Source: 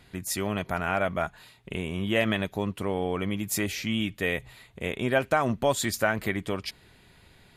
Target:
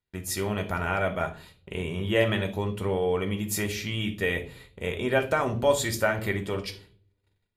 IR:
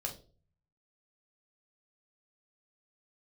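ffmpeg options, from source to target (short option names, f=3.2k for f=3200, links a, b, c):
-filter_complex "[0:a]agate=range=-33dB:threshold=-51dB:ratio=16:detection=peak,asplit=2[a][b];[1:a]atrim=start_sample=2205,asetrate=34839,aresample=44100[c];[b][c]afir=irnorm=-1:irlink=0,volume=0.5dB[d];[a][d]amix=inputs=2:normalize=0,volume=-6.5dB"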